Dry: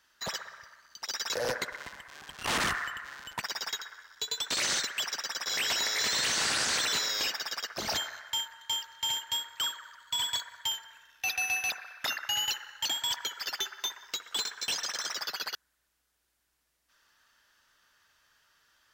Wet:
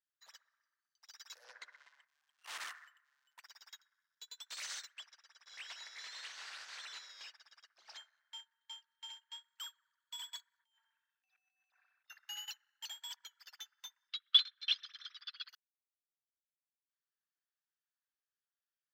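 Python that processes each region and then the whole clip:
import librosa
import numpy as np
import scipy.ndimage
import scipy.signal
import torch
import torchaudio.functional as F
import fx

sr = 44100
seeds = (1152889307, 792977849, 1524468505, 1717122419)

y = fx.chain(x, sr, fx.lowpass(hz=6100.0, slope=12),
    fx.hum_notches(base_hz=50, count=8),
    fx.env_flatten(amount_pct=50), at=(1.44, 2.05))
y = fx.chain(y, sr, fx.median_filter(points=5),
    fx.lowpass(hz=6900.0, slope=12), at=(4.94, 9.44))
y = fx.chain(y, sr, fx.lowpass(hz=1600.0, slope=6),
    fx.over_compress(threshold_db=-48.0, ratio=-1.0), at=(10.59, 12.1))
y = fx.chain(y, sr, fx.cheby1_bandpass(low_hz=1200.0, high_hz=4600.0, order=3),
    fx.peak_eq(hz=3400.0, db=12.0, octaves=0.44), at=(14.09, 15.49))
y = scipy.signal.sosfilt(scipy.signal.butter(2, 1000.0, 'highpass', fs=sr, output='sos'), y)
y = fx.upward_expand(y, sr, threshold_db=-42.0, expansion=2.5)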